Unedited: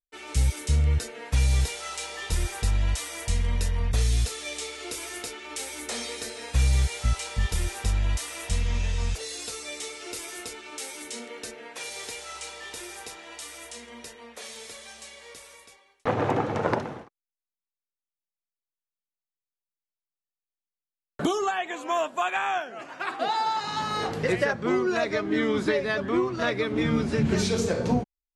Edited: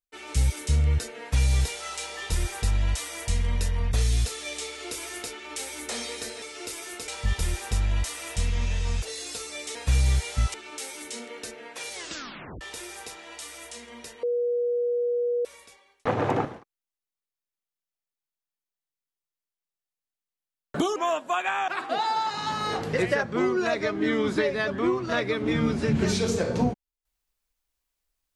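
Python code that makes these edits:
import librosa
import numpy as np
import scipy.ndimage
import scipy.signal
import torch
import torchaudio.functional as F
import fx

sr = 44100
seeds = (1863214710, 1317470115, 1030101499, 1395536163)

y = fx.edit(x, sr, fx.swap(start_s=6.42, length_s=0.79, other_s=9.88, other_length_s=0.66),
    fx.tape_stop(start_s=11.93, length_s=0.68),
    fx.bleep(start_s=14.23, length_s=1.22, hz=482.0, db=-22.5),
    fx.cut(start_s=16.45, length_s=0.45),
    fx.cut(start_s=21.41, length_s=0.43),
    fx.cut(start_s=22.56, length_s=0.42), tone=tone)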